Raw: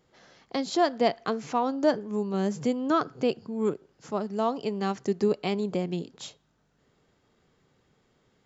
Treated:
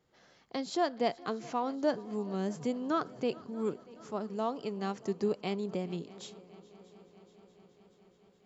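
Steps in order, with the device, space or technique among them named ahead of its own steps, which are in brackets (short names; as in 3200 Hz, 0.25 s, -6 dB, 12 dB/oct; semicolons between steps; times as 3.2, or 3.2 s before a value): multi-head tape echo (multi-head echo 0.212 s, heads second and third, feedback 68%, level -22.5 dB; wow and flutter 21 cents); gain -6.5 dB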